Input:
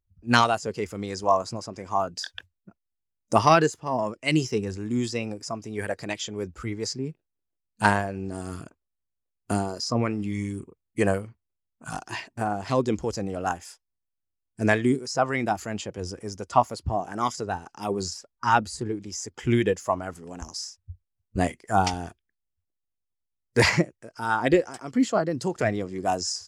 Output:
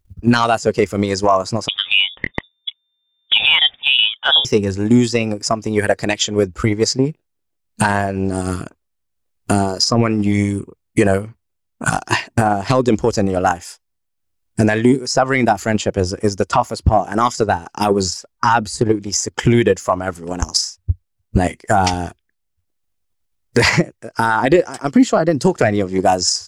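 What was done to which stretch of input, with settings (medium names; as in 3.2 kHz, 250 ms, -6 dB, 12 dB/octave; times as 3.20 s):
1.68–4.45 s: frequency inversion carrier 3.6 kHz
whole clip: transient shaper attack +11 dB, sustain -3 dB; loudness maximiser +15 dB; trim -2.5 dB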